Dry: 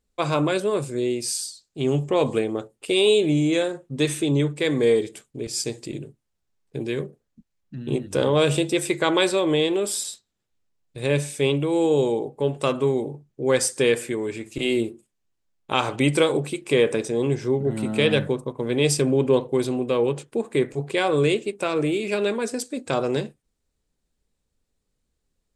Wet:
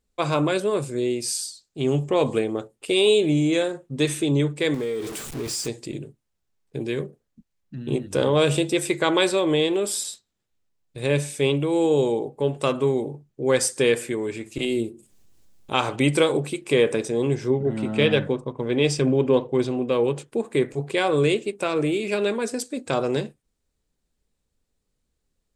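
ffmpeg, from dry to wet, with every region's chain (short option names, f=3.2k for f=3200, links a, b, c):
-filter_complex "[0:a]asettb=1/sr,asplit=3[a][b][c];[a]atrim=end=4.744[d];[b]atrim=start=4.74:end=5.68,asetpts=PTS-STARTPTS,afade=t=in:d=0.004:c=qsin,afade=t=out:st=0.936:d=0.004:c=qsin,aeval=exprs='val(0)+0.5*0.0316*sgn(val(0))':c=same,acompressor=threshold=-25dB:ratio=5:attack=3.2:release=140:knee=1:detection=peak[e];[c]atrim=start=5.676[f];[d][e]acrossfade=d=0.004:c1=hsin:c2=qsin[g];[g][f]acrossfade=d=0.004:c1=qsin:c2=hsin,asettb=1/sr,asplit=3[h][i][j];[h]atrim=end=14.654[k];[i]atrim=start=14.65:end=15.74,asetpts=PTS-STARTPTS,afade=t=in:d=0.004:c=qsin,afade=t=out:st=1.086:d=0.004:c=qsin,equalizer=f=1.5k:w=0.47:g=-8,acompressor=mode=upward:threshold=-36dB:ratio=2.5:attack=3.2:release=140:knee=2.83:detection=peak[l];[j]atrim=start=15.736[m];[k][l]acrossfade=d=0.004:c1=hsin:c2=qsin[n];[n][m]acrossfade=d=0.004:c1=qsin:c2=hsin,asettb=1/sr,asplit=3[o][p][q];[o]atrim=end=17.504[r];[p]atrim=start=17.5:end=19.92,asetpts=PTS-STARTPTS,afade=t=in:d=0.004:c=qsin,afade=t=out:st=2.416:d=0.004:c=qsin,lowpass=5.5k,aphaser=in_gain=1:out_gain=1:delay=4.4:decay=0.21:speed=1.9:type=triangular,bandreject=f=4.1k:w=12[s];[q]atrim=start=19.916[t];[r][s]acrossfade=d=0.004:c1=hsin:c2=qsin[u];[u][t]acrossfade=d=0.004:c1=qsin:c2=hsin"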